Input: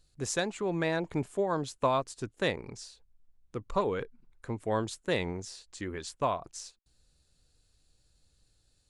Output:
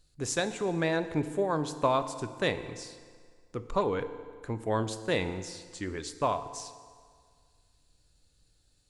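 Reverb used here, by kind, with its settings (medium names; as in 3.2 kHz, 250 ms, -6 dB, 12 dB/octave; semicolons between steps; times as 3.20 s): FDN reverb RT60 1.9 s, low-frequency decay 0.9×, high-frequency decay 0.8×, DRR 10 dB; trim +1 dB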